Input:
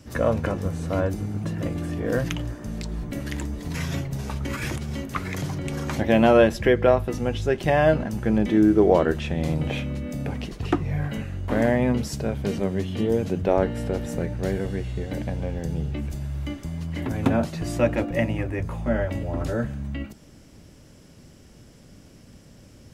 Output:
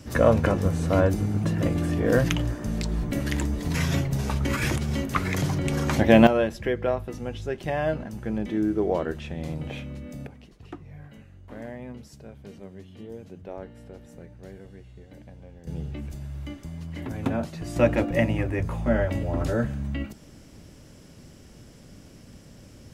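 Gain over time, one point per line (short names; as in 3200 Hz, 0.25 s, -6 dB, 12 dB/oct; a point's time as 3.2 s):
+3.5 dB
from 6.27 s -7.5 dB
from 10.27 s -17.5 dB
from 15.67 s -5.5 dB
from 17.76 s +1 dB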